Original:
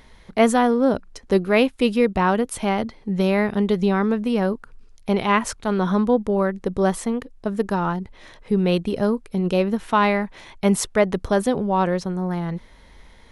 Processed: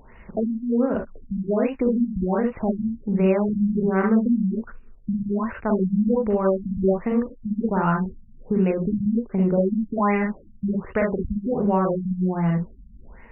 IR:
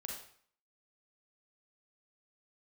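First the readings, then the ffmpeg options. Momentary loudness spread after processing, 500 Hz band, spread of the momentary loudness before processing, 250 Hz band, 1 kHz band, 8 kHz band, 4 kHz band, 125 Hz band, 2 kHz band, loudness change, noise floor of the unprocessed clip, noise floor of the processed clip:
8 LU, -3.0 dB, 9 LU, 0.0 dB, -5.5 dB, under -40 dB, under -20 dB, +0.5 dB, -7.0 dB, -2.0 dB, -49 dBFS, -47 dBFS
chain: -filter_complex "[0:a]acompressor=threshold=0.1:ratio=6[s0];[1:a]atrim=start_sample=2205,atrim=end_sample=3528[s1];[s0][s1]afir=irnorm=-1:irlink=0,afftfilt=real='re*lt(b*sr/1024,220*pow(3000/220,0.5+0.5*sin(2*PI*1.3*pts/sr)))':imag='im*lt(b*sr/1024,220*pow(3000/220,0.5+0.5*sin(2*PI*1.3*pts/sr)))':win_size=1024:overlap=0.75,volume=2"

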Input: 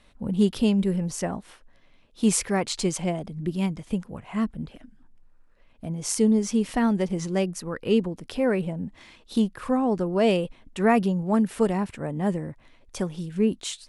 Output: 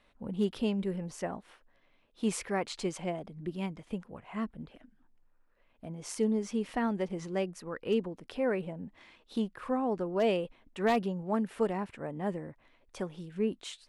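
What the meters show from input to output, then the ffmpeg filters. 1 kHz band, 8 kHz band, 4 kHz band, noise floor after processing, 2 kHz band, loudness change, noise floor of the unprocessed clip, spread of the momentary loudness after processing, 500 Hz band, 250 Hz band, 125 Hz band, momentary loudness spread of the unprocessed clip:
-6.0 dB, -13.5 dB, -9.0 dB, -68 dBFS, -6.5 dB, -8.5 dB, -57 dBFS, 12 LU, -6.0 dB, -10.0 dB, -11.0 dB, 11 LU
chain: -af "bass=f=250:g=-7,treble=f=4000:g=-9,aeval=exprs='0.211*(abs(mod(val(0)/0.211+3,4)-2)-1)':c=same,volume=0.531"

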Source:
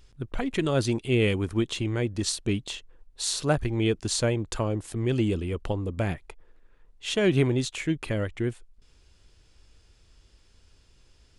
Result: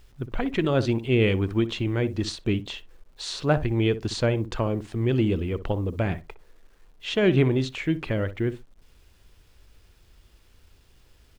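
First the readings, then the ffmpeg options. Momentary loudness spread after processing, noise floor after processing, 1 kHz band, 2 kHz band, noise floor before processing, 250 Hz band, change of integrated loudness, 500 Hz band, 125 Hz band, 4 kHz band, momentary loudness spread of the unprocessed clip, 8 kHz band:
9 LU, -58 dBFS, +2.0 dB, +1.5 dB, -60 dBFS, +2.5 dB, +2.0 dB, +2.5 dB, +2.5 dB, -1.0 dB, 8 LU, -10.0 dB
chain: -filter_complex "[0:a]lowpass=3800,acrusher=bits=10:mix=0:aa=0.000001,asplit=2[s0][s1];[s1]adelay=61,lowpass=f=910:p=1,volume=0.266,asplit=2[s2][s3];[s3]adelay=61,lowpass=f=910:p=1,volume=0.17[s4];[s0][s2][s4]amix=inputs=3:normalize=0,volume=1.26"

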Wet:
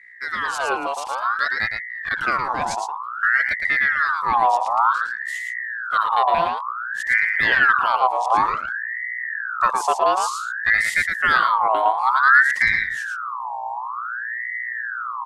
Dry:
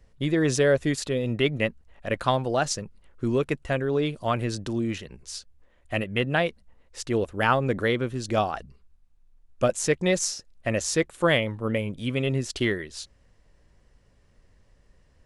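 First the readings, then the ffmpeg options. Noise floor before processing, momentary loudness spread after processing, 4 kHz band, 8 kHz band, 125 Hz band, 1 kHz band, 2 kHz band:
-61 dBFS, 11 LU, +0.5 dB, -3.5 dB, -16.5 dB, +14.0 dB, +14.0 dB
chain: -filter_complex "[0:a]aeval=exprs='val(0)+0.00794*(sin(2*PI*60*n/s)+sin(2*PI*2*60*n/s)/2+sin(2*PI*3*60*n/s)/3+sin(2*PI*4*60*n/s)/4+sin(2*PI*5*60*n/s)/5)':c=same,asubboost=boost=11:cutoff=170,asplit=2[s0][s1];[s1]aecho=0:1:112:0.531[s2];[s0][s2]amix=inputs=2:normalize=0,aeval=exprs='val(0)*sin(2*PI*1400*n/s+1400*0.4/0.55*sin(2*PI*0.55*n/s))':c=same,volume=0.891"

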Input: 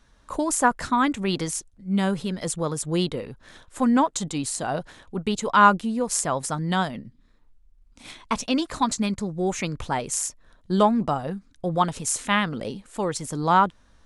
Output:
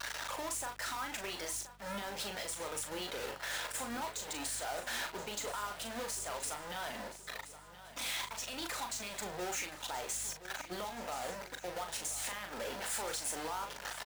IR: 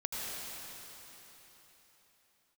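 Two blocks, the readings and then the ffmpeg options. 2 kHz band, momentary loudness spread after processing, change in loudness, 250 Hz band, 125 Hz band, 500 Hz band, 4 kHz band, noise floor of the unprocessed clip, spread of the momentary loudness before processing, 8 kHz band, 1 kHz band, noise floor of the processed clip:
-10.5 dB, 5 LU, -14.5 dB, -24.0 dB, -24.0 dB, -15.0 dB, -7.0 dB, -58 dBFS, 11 LU, -8.5 dB, -17.5 dB, -53 dBFS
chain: -filter_complex "[0:a]aeval=exprs='val(0)+0.5*0.1*sgn(val(0))':c=same,highpass=660,bandreject=f=1100:w=8.8,agate=range=0.0224:threshold=0.0355:ratio=3:detection=peak,afftdn=nr=21:nf=-37,acompressor=threshold=0.0141:ratio=3,alimiter=level_in=2.24:limit=0.0631:level=0:latency=1:release=185,volume=0.447,acrusher=bits=7:mix=0:aa=0.5,aeval=exprs='val(0)+0.000562*(sin(2*PI*50*n/s)+sin(2*PI*2*50*n/s)/2+sin(2*PI*3*50*n/s)/3+sin(2*PI*4*50*n/s)/4+sin(2*PI*5*50*n/s)/5)':c=same,acrusher=bits=2:mode=log:mix=0:aa=0.000001,asplit=2[s0][s1];[s1]adelay=39,volume=0.501[s2];[s0][s2]amix=inputs=2:normalize=0,asplit=2[s3][s4];[s4]aecho=0:1:1026|2052|3078|4104|5130:0.2|0.0998|0.0499|0.0249|0.0125[s5];[s3][s5]amix=inputs=2:normalize=0"

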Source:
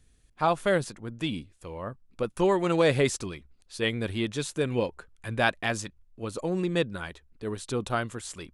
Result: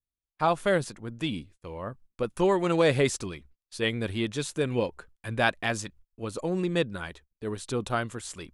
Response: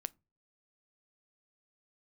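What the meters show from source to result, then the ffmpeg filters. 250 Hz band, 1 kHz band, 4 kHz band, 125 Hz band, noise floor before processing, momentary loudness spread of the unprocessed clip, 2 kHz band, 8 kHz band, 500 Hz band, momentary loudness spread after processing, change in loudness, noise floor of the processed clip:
0.0 dB, 0.0 dB, 0.0 dB, 0.0 dB, -63 dBFS, 16 LU, 0.0 dB, 0.0 dB, 0.0 dB, 16 LU, 0.0 dB, under -85 dBFS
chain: -af "agate=range=0.02:threshold=0.00282:ratio=16:detection=peak"

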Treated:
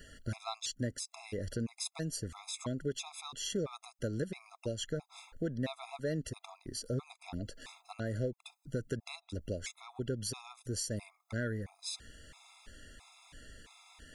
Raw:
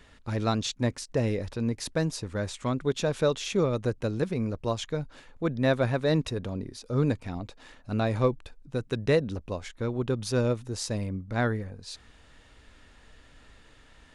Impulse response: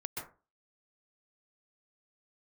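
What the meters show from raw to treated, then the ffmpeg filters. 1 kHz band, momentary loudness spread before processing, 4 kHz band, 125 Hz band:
-12.5 dB, 10 LU, -5.0 dB, -10.5 dB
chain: -af "crystalizer=i=2:c=0,acompressor=threshold=0.02:ratio=4,afftfilt=real='re*gt(sin(2*PI*1.5*pts/sr)*(1-2*mod(floor(b*sr/1024/680),2)),0)':imag='im*gt(sin(2*PI*1.5*pts/sr)*(1-2*mod(floor(b*sr/1024/680),2)),0)':win_size=1024:overlap=0.75,volume=1.12"

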